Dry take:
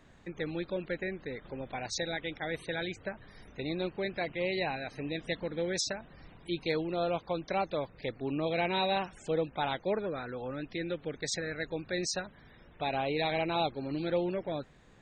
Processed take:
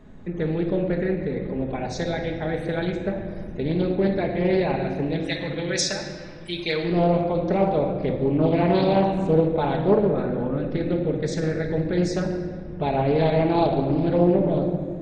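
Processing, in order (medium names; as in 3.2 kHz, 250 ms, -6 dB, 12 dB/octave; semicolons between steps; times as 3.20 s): tilt shelf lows +7.5 dB, about 860 Hz, from 5.18 s lows -3 dB, from 6.83 s lows +9 dB; reverberation RT60 1.9 s, pre-delay 5 ms, DRR 1.5 dB; loudspeaker Doppler distortion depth 0.33 ms; trim +5 dB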